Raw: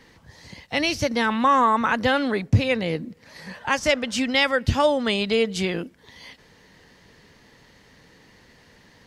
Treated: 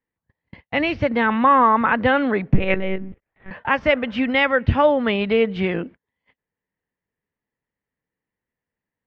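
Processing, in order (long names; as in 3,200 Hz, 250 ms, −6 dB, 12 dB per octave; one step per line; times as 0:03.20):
low-pass filter 2,600 Hz 24 dB per octave
noise gate −41 dBFS, range −37 dB
0:02.54–0:03.51: one-pitch LPC vocoder at 8 kHz 190 Hz
level +3.5 dB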